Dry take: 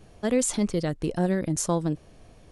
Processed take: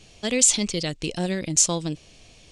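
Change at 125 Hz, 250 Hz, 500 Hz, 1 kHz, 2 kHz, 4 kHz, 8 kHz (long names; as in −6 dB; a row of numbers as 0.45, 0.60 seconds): −2.0, −2.0, −2.0, −2.0, +5.5, +13.0, +11.5 decibels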